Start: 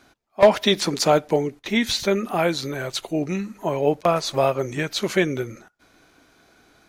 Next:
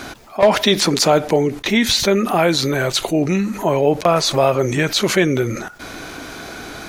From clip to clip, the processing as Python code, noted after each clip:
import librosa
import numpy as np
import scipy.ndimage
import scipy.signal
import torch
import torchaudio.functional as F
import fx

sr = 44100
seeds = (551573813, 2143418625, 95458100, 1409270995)

y = fx.env_flatten(x, sr, amount_pct=50)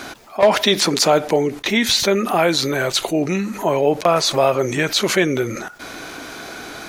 y = fx.low_shelf(x, sr, hz=160.0, db=-9.0)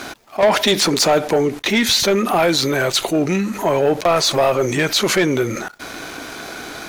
y = fx.leveller(x, sr, passes=2)
y = y * 10.0 ** (-5.0 / 20.0)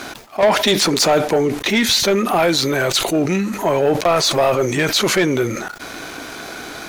y = fx.sustainer(x, sr, db_per_s=100.0)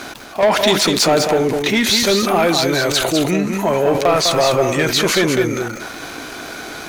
y = x + 10.0 ** (-5.5 / 20.0) * np.pad(x, (int(201 * sr / 1000.0), 0))[:len(x)]